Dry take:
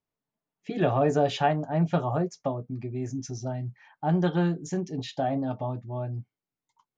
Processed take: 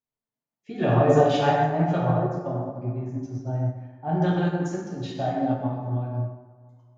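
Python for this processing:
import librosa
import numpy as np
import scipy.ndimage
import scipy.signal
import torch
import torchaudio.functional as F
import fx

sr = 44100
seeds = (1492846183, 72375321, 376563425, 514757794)

y = fx.lowpass(x, sr, hz=1400.0, slope=6, at=(1.97, 4.15))
y = fx.rev_plate(y, sr, seeds[0], rt60_s=1.9, hf_ratio=0.45, predelay_ms=0, drr_db=-4.5)
y = fx.upward_expand(y, sr, threshold_db=-35.0, expansion=1.5)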